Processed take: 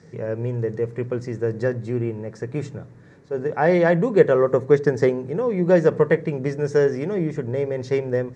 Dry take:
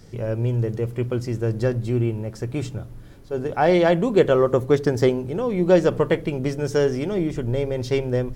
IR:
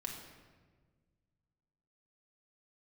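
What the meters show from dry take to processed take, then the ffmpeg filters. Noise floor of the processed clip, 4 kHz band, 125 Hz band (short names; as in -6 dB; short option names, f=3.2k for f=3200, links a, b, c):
-47 dBFS, n/a, -2.0 dB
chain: -af "highpass=120,equalizer=f=160:t=q:w=4:g=8,equalizer=f=460:t=q:w=4:g=7,equalizer=f=990:t=q:w=4:g=3,equalizer=f=1.8k:t=q:w=4:g=9,equalizer=f=3.1k:t=q:w=4:g=-10,equalizer=f=4.9k:t=q:w=4:g=-4,lowpass=f=7.5k:w=0.5412,lowpass=f=7.5k:w=1.3066,volume=-3dB"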